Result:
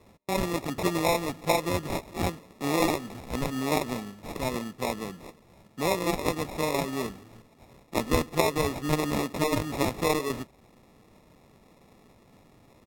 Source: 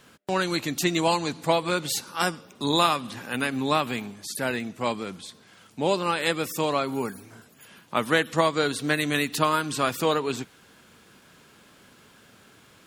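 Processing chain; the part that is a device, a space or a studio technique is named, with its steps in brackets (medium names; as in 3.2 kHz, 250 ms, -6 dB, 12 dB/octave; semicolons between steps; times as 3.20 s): crushed at another speed (playback speed 1.25×; sample-and-hold 23×; playback speed 0.8×); trim -2.5 dB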